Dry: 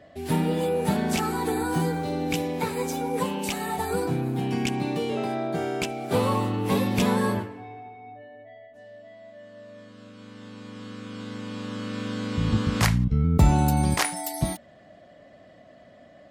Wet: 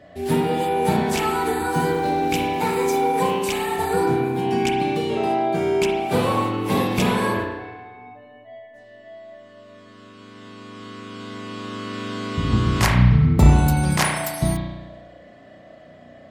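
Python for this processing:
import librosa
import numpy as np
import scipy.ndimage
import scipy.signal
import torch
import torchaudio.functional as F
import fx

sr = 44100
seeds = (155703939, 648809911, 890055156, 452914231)

y = fx.zero_step(x, sr, step_db=-40.5, at=(1.8, 3.39))
y = fx.rev_spring(y, sr, rt60_s=1.1, pass_ms=(33,), chirp_ms=45, drr_db=-1.0)
y = F.gain(torch.from_numpy(y), 2.5).numpy()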